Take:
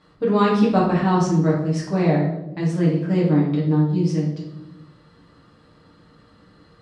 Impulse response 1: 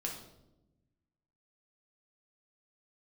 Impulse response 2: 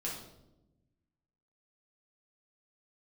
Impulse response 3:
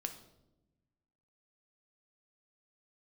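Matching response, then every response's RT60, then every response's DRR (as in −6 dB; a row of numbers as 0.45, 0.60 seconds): 2; 0.95, 0.95, 0.95 seconds; −1.5, −6.0, 5.5 decibels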